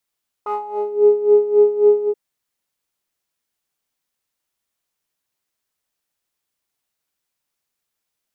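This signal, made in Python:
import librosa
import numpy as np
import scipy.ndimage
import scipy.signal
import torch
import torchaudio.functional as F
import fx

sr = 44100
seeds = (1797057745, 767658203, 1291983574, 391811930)

y = fx.sub_patch_tremolo(sr, seeds[0], note=68, wave='triangle', wave2='triangle', interval_st=12, detune_cents=16, level2_db=-9.0, sub_db=-24.0, noise_db=-23.0, kind='bandpass', cutoff_hz=430.0, q=4.8, env_oct=1.5, env_decay_s=0.51, env_sustain_pct=0, attack_ms=6.4, decay_s=0.15, sustain_db=-4, release_s=0.06, note_s=1.62, lfo_hz=3.7, tremolo_db=14.0)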